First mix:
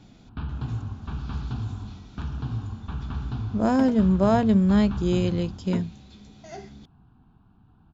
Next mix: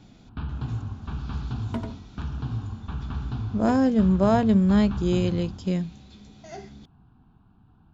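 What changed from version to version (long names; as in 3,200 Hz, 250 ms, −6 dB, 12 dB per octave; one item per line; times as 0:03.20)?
second sound: entry −2.05 s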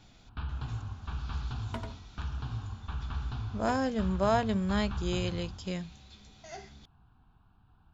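master: add parametric band 230 Hz −12 dB 2.4 octaves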